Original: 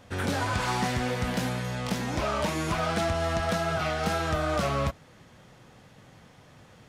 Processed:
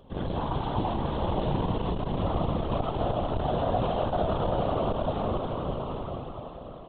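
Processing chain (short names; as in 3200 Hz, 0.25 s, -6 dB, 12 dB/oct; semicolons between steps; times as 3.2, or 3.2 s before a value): high shelf 3100 Hz -10 dB; LPC vocoder at 8 kHz pitch kept; band shelf 1800 Hz -14.5 dB 1.1 oct; on a send: bouncing-ball echo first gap 0.51 s, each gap 0.7×, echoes 5; on the sum: limiter -18 dBFS, peak gain reduction 6.5 dB; plate-style reverb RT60 5 s, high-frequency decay 1×, DRR 1 dB; whisperiser; core saturation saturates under 100 Hz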